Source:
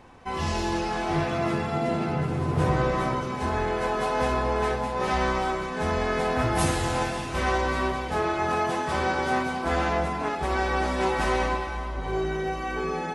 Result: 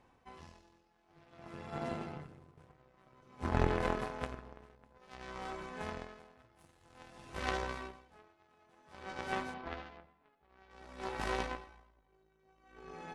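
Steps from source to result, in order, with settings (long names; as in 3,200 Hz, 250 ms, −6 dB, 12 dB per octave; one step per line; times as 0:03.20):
0:03.39–0:04.98: low-shelf EQ 340 Hz +10.5 dB
0:09.54–0:10.71: low-pass filter 4,000 Hz 24 dB per octave
harmonic generator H 3 −9 dB, 5 −29 dB, 6 −34 dB, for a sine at −7.5 dBFS
tremolo with a sine in dB 0.53 Hz, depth 31 dB
level +3.5 dB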